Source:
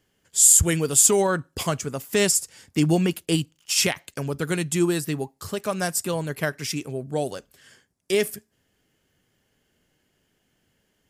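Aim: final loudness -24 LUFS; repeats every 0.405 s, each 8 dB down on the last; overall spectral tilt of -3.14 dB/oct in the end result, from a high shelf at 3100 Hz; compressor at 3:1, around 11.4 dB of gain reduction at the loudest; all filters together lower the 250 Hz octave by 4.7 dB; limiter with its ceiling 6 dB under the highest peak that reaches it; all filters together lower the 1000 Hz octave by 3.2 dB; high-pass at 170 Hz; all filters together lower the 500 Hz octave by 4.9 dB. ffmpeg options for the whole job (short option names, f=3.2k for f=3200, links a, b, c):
-af "highpass=170,equalizer=f=250:t=o:g=-3.5,equalizer=f=500:t=o:g=-4.5,equalizer=f=1k:t=o:g=-3,highshelf=f=3.1k:g=4.5,acompressor=threshold=-23dB:ratio=3,alimiter=limit=-15dB:level=0:latency=1,aecho=1:1:405|810|1215|1620|2025:0.398|0.159|0.0637|0.0255|0.0102,volume=4.5dB"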